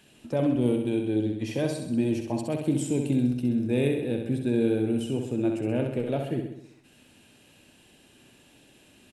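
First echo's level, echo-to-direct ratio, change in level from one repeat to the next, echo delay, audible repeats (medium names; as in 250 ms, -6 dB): -5.5 dB, -4.0 dB, -5.0 dB, 65 ms, 6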